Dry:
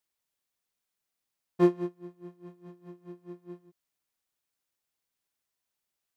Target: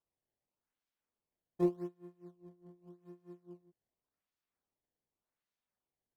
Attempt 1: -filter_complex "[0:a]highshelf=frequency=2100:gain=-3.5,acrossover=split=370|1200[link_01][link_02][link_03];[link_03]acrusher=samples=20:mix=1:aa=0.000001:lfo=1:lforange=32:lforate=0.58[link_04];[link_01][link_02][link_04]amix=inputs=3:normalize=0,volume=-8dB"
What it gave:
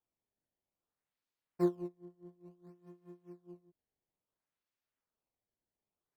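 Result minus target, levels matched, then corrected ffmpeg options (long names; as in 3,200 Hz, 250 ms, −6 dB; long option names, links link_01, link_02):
sample-and-hold swept by an LFO: distortion −11 dB
-filter_complex "[0:a]highshelf=frequency=2100:gain=-3.5,acrossover=split=370|1200[link_01][link_02][link_03];[link_03]acrusher=samples=20:mix=1:aa=0.000001:lfo=1:lforange=32:lforate=0.86[link_04];[link_01][link_02][link_04]amix=inputs=3:normalize=0,volume=-8dB"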